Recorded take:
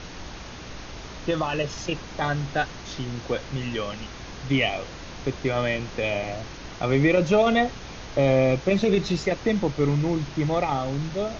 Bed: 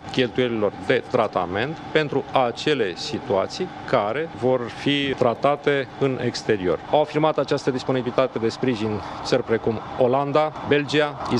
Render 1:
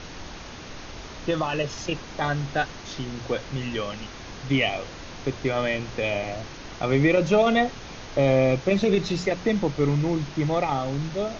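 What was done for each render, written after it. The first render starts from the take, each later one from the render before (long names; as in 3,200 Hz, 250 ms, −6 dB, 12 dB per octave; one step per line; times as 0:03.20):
hum removal 60 Hz, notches 3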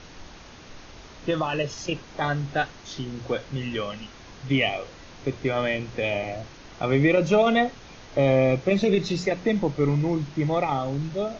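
noise reduction from a noise print 6 dB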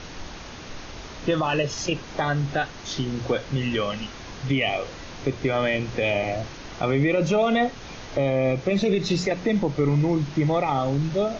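in parallel at +1 dB: downward compressor, threshold −29 dBFS, peak gain reduction 13.5 dB
on the sum: brickwall limiter −13 dBFS, peak gain reduction 6.5 dB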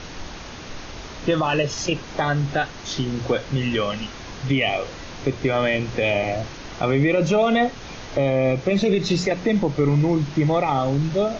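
level +2.5 dB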